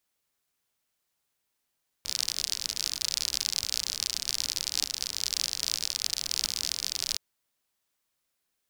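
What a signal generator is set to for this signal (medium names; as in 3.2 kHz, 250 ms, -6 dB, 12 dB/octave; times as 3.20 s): rain from filtered ticks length 5.12 s, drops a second 56, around 4.9 kHz, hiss -19 dB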